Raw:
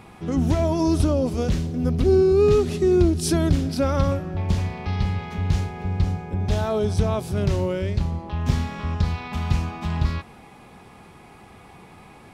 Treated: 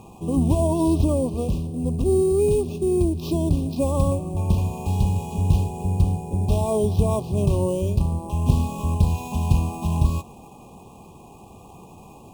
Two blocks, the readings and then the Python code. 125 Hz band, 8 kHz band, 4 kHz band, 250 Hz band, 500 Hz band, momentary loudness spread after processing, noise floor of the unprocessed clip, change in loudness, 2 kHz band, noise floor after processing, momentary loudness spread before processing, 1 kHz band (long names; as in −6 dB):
+1.5 dB, 0.0 dB, −5.5 dB, 0.0 dB, −1.5 dB, 5 LU, −47 dBFS, 0.0 dB, −10.0 dB, −46 dBFS, 9 LU, 0.0 dB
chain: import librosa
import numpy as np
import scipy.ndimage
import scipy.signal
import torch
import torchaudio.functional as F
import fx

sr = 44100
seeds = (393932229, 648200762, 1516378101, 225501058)

y = fx.high_shelf(x, sr, hz=3400.0, db=-10.5)
y = fx.rider(y, sr, range_db=10, speed_s=2.0)
y = fx.sample_hold(y, sr, seeds[0], rate_hz=9100.0, jitter_pct=0)
y = fx.brickwall_bandstop(y, sr, low_hz=1200.0, high_hz=2400.0)